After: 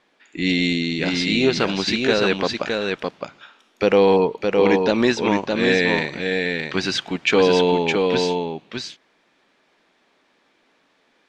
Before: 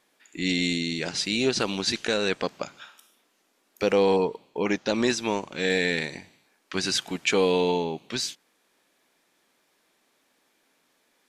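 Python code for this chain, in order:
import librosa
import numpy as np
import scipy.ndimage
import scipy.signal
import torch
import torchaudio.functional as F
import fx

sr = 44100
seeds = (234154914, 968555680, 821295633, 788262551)

y = scipy.signal.sosfilt(scipy.signal.butter(2, 3900.0, 'lowpass', fs=sr, output='sos'), x)
y = y + 10.0 ** (-4.0 / 20.0) * np.pad(y, (int(613 * sr / 1000.0), 0))[:len(y)]
y = F.gain(torch.from_numpy(y), 6.0).numpy()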